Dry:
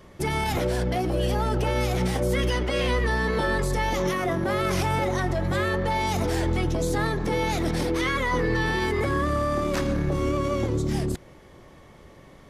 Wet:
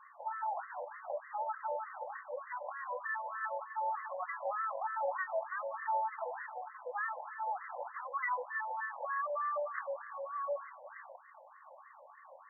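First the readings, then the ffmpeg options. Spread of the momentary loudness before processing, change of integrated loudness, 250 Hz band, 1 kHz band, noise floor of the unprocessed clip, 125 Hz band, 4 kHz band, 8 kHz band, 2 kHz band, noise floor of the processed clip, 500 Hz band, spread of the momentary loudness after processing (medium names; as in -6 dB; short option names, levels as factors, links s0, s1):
2 LU, -13.5 dB, under -40 dB, -7.0 dB, -49 dBFS, under -40 dB, under -40 dB, under -40 dB, -11.5 dB, -58 dBFS, -14.5 dB, 16 LU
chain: -af "alimiter=level_in=1.12:limit=0.0631:level=0:latency=1:release=36,volume=0.891,afftfilt=real='re*between(b*sr/1024,700*pow(1500/700,0.5+0.5*sin(2*PI*3.3*pts/sr))/1.41,700*pow(1500/700,0.5+0.5*sin(2*PI*3.3*pts/sr))*1.41)':imag='im*between(b*sr/1024,700*pow(1500/700,0.5+0.5*sin(2*PI*3.3*pts/sr))/1.41,700*pow(1500/700,0.5+0.5*sin(2*PI*3.3*pts/sr))*1.41)':win_size=1024:overlap=0.75,volume=1.33"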